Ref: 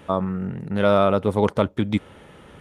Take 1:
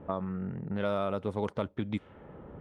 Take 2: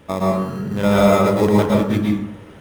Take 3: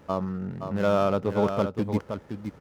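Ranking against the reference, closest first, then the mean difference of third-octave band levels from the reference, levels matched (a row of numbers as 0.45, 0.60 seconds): 1, 3, 2; 3.0, 4.5, 8.0 decibels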